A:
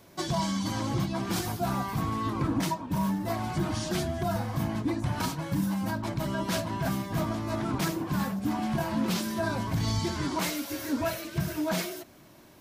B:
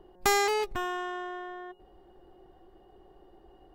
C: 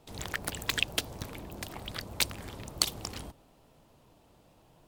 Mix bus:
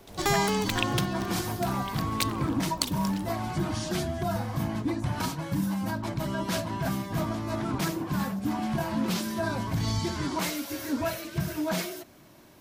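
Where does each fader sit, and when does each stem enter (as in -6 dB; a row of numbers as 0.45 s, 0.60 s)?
0.0 dB, -2.0 dB, -1.5 dB; 0.00 s, 0.00 s, 0.00 s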